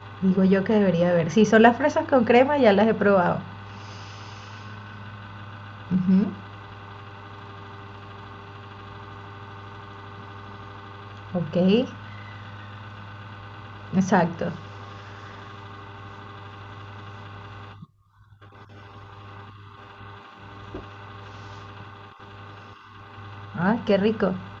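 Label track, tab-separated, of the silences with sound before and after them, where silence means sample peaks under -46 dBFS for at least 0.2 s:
17.850000	18.210000	silence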